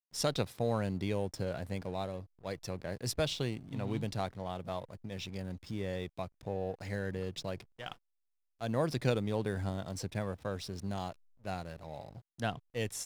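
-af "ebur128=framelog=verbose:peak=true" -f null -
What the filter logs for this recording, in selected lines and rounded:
Integrated loudness:
  I:         -37.5 LUFS
  Threshold: -47.6 LUFS
Loudness range:
  LRA:         3.9 LU
  Threshold: -57.9 LUFS
  LRA low:   -40.2 LUFS
  LRA high:  -36.3 LUFS
True peak:
  Peak:      -17.4 dBFS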